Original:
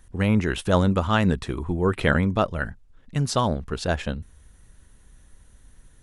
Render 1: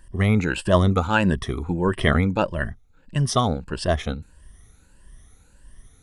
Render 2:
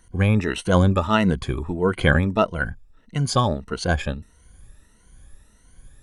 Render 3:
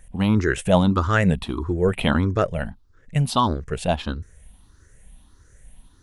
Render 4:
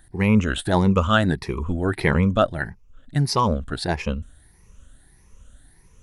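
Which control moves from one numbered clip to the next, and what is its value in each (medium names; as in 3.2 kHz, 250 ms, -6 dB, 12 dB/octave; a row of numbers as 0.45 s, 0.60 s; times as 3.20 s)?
drifting ripple filter, ripples per octave: 1.3, 1.9, 0.51, 0.81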